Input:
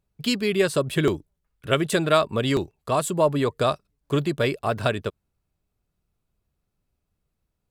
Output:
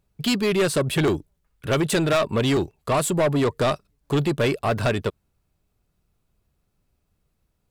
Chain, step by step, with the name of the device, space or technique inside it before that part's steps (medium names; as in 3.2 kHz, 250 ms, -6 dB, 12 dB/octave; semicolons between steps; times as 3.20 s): saturation between pre-emphasis and de-emphasis (treble shelf 7.9 kHz +7 dB; saturation -22 dBFS, distortion -9 dB; treble shelf 7.9 kHz -7 dB); trim +6 dB